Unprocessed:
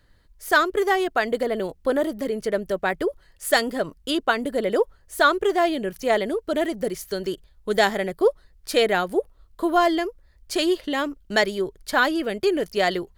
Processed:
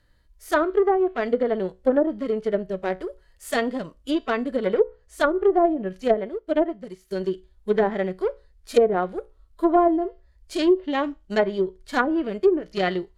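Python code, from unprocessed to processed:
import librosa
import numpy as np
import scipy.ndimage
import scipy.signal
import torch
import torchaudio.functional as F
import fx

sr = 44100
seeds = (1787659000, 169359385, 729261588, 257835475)

y = fx.cheby_harmonics(x, sr, harmonics=(7,), levels_db=(-23,), full_scale_db=-5.5)
y = fx.hpss(y, sr, part='percussive', gain_db=-15)
y = fx.comb_fb(y, sr, f0_hz=62.0, decay_s=0.27, harmonics='all', damping=0.0, mix_pct=40)
y = fx.env_lowpass_down(y, sr, base_hz=570.0, full_db=-21.5)
y = fx.upward_expand(y, sr, threshold_db=-46.0, expansion=1.5, at=(6.14, 7.11))
y = y * 10.0 ** (9.0 / 20.0)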